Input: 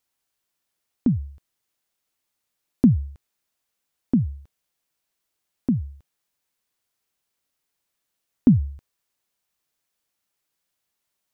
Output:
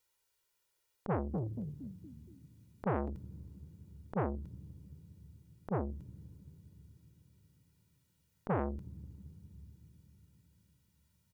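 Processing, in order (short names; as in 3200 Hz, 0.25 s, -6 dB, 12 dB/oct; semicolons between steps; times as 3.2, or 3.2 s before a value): comb 2.1 ms, depth 85%; limiter -17.5 dBFS, peak gain reduction 11 dB; 1.1–3.1 frequency-shifting echo 0.234 s, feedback 42%, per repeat +39 Hz, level -6 dB; reverb RT60 5.0 s, pre-delay 13 ms, DRR 17.5 dB; core saturation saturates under 690 Hz; gain -2.5 dB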